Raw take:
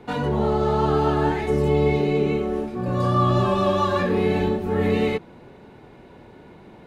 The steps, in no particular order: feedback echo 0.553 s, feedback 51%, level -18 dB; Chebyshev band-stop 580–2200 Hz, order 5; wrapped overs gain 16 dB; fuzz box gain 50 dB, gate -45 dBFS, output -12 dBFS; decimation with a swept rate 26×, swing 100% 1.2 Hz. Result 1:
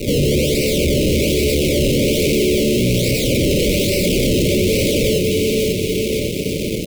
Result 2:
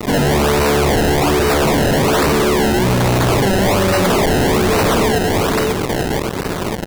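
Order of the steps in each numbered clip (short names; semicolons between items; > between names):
decimation with a swept rate > feedback echo > wrapped overs > fuzz box > Chebyshev band-stop; Chebyshev band-stop > wrapped overs > feedback echo > fuzz box > decimation with a swept rate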